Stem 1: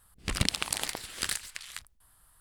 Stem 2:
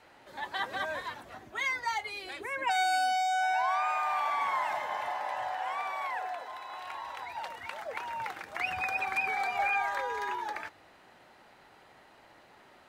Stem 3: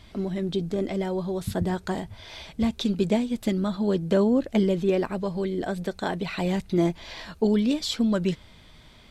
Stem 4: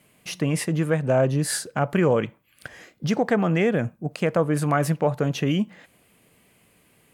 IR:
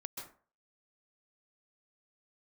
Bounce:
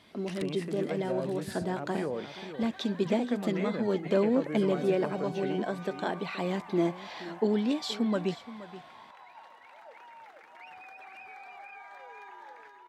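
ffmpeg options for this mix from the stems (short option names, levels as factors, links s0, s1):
-filter_complex "[0:a]volume=0.316[s0];[1:a]alimiter=level_in=1.68:limit=0.0631:level=0:latency=1:release=32,volume=0.596,adelay=2000,volume=0.251,asplit=2[s1][s2];[s2]volume=0.596[s3];[2:a]volume=0.708,asplit=2[s4][s5];[s5]volume=0.158[s6];[3:a]highshelf=f=4800:g=-8,acrossover=split=480|3000[s7][s8][s9];[s8]acompressor=threshold=0.0398:ratio=6[s10];[s7][s10][s9]amix=inputs=3:normalize=0,volume=0.282,asplit=3[s11][s12][s13];[s12]volume=0.335[s14];[s13]apad=whole_len=106025[s15];[s0][s15]sidechaincompress=threshold=0.00794:ratio=8:attack=16:release=983[s16];[s3][s6][s14]amix=inputs=3:normalize=0,aecho=0:1:475:1[s17];[s16][s1][s4][s11][s17]amix=inputs=5:normalize=0,highpass=220,highshelf=f=5000:g=-8"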